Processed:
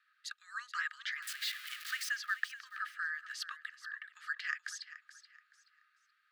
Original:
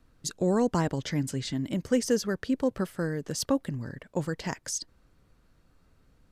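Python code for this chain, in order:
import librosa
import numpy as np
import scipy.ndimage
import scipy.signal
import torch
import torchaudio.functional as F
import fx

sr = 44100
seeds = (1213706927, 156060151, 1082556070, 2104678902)

y = fx.crossing_spikes(x, sr, level_db=-22.5, at=(1.22, 2.09))
y = scipy.signal.sosfilt(scipy.signal.cheby1(6, 9, 1200.0, 'highpass', fs=sr, output='sos'), y)
y = fx.high_shelf_res(y, sr, hz=3800.0, db=-13.5, q=1.5)
y = fx.echo_feedback(y, sr, ms=428, feedback_pct=31, wet_db=-14.5)
y = y * 10.0 ** (6.0 / 20.0)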